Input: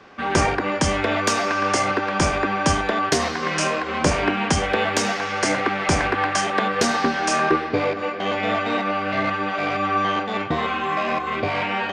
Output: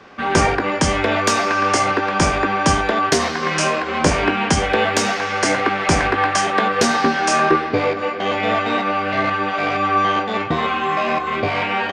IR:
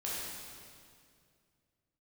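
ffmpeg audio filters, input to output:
-filter_complex "[0:a]asplit=2[s0][s1];[s1]adelay=18,volume=0.266[s2];[s0][s2]amix=inputs=2:normalize=0,volume=1.41"

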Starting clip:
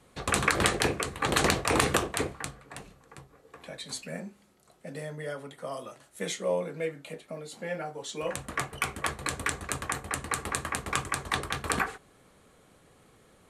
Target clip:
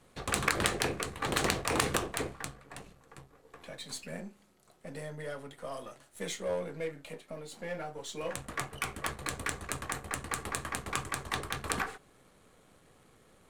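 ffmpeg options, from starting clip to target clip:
-af "aeval=exprs='if(lt(val(0),0),0.447*val(0),val(0))':c=same,aeval=exprs='0.562*(cos(1*acos(clip(val(0)/0.562,-1,1)))-cos(1*PI/2))+0.0708*(cos(8*acos(clip(val(0)/0.562,-1,1)))-cos(8*PI/2))':c=same"

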